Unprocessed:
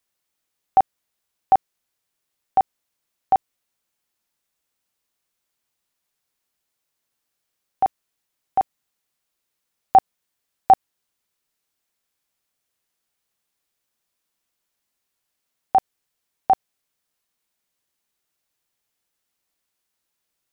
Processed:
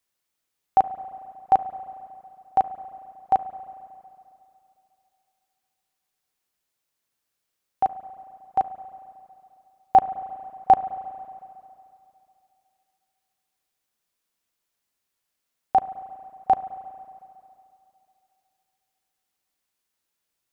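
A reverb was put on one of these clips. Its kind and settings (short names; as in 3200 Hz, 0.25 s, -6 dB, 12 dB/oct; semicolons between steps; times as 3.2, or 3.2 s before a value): spring tank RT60 2.7 s, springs 34/45 ms, chirp 70 ms, DRR 12 dB; gain -2 dB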